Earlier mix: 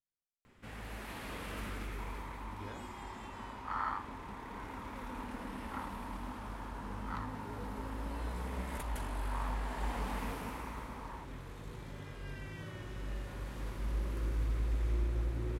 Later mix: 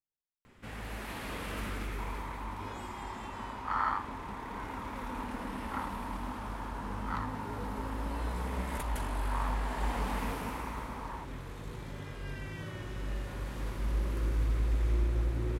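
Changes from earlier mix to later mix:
first sound +4.0 dB; second sound +5.5 dB

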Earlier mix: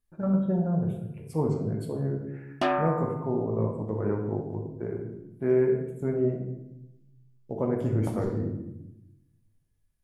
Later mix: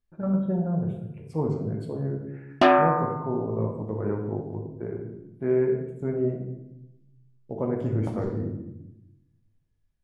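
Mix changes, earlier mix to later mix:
background +8.5 dB; master: add distance through air 72 m

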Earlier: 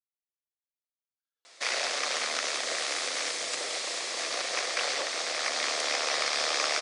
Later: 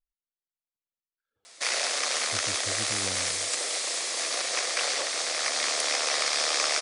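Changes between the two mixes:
speech: remove band-pass filter 5.5 kHz, Q 1.2; background: remove distance through air 69 m

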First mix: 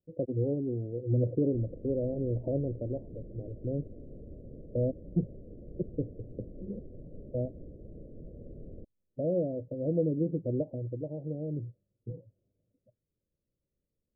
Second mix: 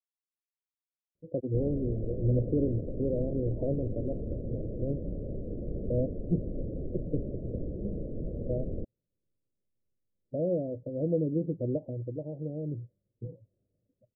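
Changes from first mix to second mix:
speech: entry +1.15 s; background +11.0 dB

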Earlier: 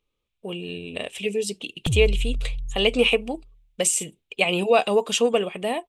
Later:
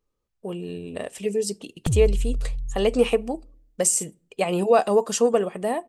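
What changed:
speech: add high-order bell 2.9 kHz -12.5 dB 1 oct; reverb: on

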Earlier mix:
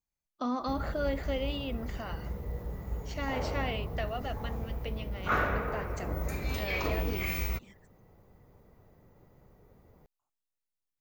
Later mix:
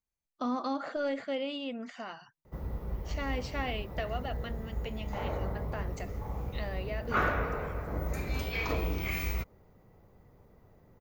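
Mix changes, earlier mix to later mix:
background: entry +1.85 s; master: add treble shelf 6.9 kHz -3.5 dB

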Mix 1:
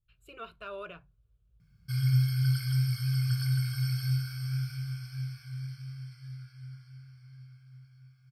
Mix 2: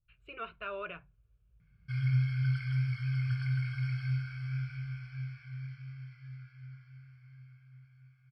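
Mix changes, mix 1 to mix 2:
background -3.5 dB; master: add resonant low-pass 2.3 kHz, resonance Q 2.2

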